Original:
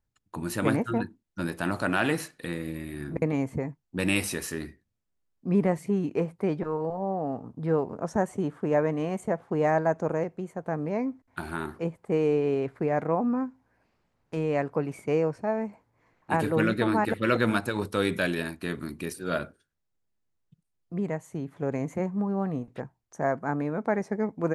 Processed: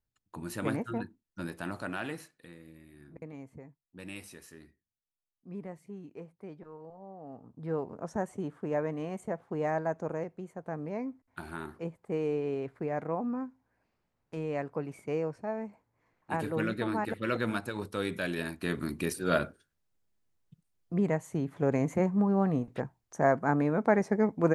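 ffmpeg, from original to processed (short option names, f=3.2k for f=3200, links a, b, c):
-af "volume=13dB,afade=t=out:st=1.43:d=1.09:silence=0.281838,afade=t=in:st=7.17:d=0.65:silence=0.281838,afade=t=in:st=18.22:d=0.72:silence=0.354813"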